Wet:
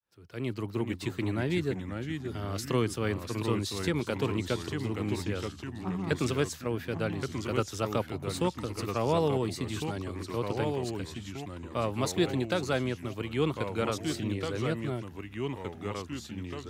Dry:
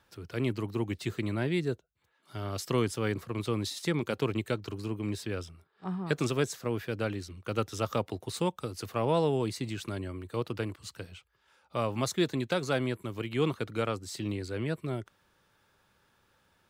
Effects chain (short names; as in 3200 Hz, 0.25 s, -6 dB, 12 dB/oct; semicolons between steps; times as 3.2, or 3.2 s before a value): opening faded in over 0.68 s; echoes that change speed 0.376 s, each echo -2 st, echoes 3, each echo -6 dB